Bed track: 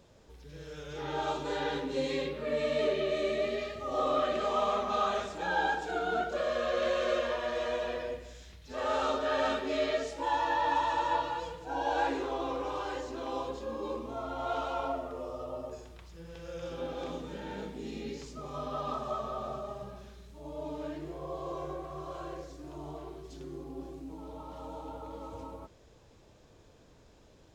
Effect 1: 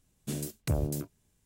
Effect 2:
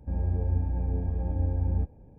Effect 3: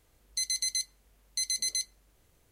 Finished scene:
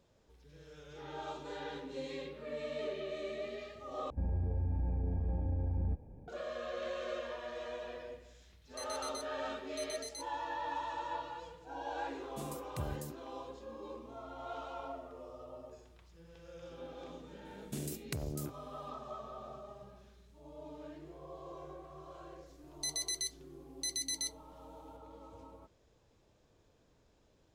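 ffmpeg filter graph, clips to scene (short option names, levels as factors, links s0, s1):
-filter_complex "[3:a]asplit=2[s0][s1];[1:a]asplit=2[s2][s3];[0:a]volume=0.316[s4];[2:a]alimiter=level_in=1.41:limit=0.0631:level=0:latency=1:release=46,volume=0.708[s5];[s3]acompressor=threshold=0.01:ratio=5:attack=19:release=52:knee=1:detection=peak[s6];[s1]afreqshift=-49[s7];[s4]asplit=2[s8][s9];[s8]atrim=end=4.104[s10];[s5]atrim=end=2.18,asetpts=PTS-STARTPTS,volume=0.891[s11];[s9]atrim=start=6.276[s12];[s0]atrim=end=2.51,asetpts=PTS-STARTPTS,volume=0.158,afade=t=in:d=0.004:c=hsin,afade=t=out:st=2.506:d=0.004:c=hsin,adelay=8400[s13];[s2]atrim=end=1.45,asetpts=PTS-STARTPTS,volume=0.299,afade=t=in:d=0.004:c=hsin,afade=t=out:st=1.446:d=0.004:c=hsin,adelay=12090[s14];[s6]atrim=end=1.45,asetpts=PTS-STARTPTS,volume=0.944,afade=t=in:d=0.004:c=hsin,afade=t=out:st=1.446:d=0.004:c=hsin,adelay=17450[s15];[s7]atrim=end=2.51,asetpts=PTS-STARTPTS,volume=0.473,afade=t=in:d=0.004:c=hsin,afade=t=out:st=2.506:d=0.004:c=hsin,adelay=22460[s16];[s10][s11]acrossfade=d=0.004:c1=hsin:c2=hsin[s17];[s17][s12]acrossfade=d=0.004:c1=hsin:c2=hsin[s18];[s18][s13][s14][s15][s16]amix=inputs=5:normalize=0"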